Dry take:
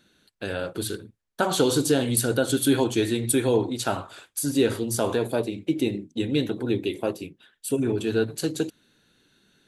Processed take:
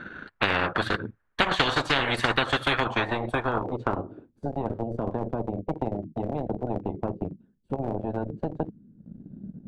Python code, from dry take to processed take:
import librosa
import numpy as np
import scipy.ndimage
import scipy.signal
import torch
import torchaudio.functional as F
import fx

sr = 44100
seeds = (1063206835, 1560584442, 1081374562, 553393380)

y = fx.filter_sweep_lowpass(x, sr, from_hz=1500.0, to_hz=200.0, start_s=2.54, end_s=4.51, q=3.0)
y = fx.transient(y, sr, attack_db=6, sustain_db=-10)
y = fx.spectral_comp(y, sr, ratio=10.0)
y = y * librosa.db_to_amplitude(-6.5)